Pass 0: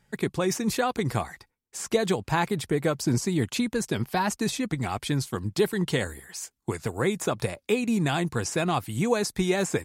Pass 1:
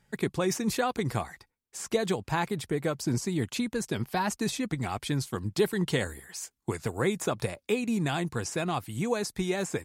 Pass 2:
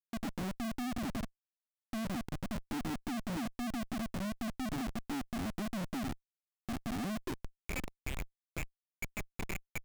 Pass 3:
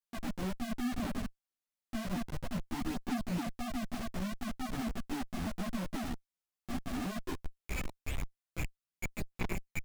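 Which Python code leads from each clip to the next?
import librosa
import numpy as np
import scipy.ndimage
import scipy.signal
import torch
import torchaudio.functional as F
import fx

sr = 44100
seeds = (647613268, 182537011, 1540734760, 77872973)

y1 = fx.rider(x, sr, range_db=4, speed_s=2.0)
y1 = F.gain(torch.from_numpy(y1), -3.5).numpy()
y2 = fx.formant_cascade(y1, sr, vowel='i')
y2 = fx.filter_sweep_bandpass(y2, sr, from_hz=230.0, to_hz=2300.0, start_s=7.18, end_s=7.75, q=7.4)
y2 = fx.schmitt(y2, sr, flips_db=-54.5)
y2 = F.gain(torch.from_numpy(y2), 9.5).numpy()
y3 = fx.chorus_voices(y2, sr, voices=4, hz=1.2, base_ms=14, depth_ms=3.0, mix_pct=60)
y3 = F.gain(torch.from_numpy(y3), 3.0).numpy()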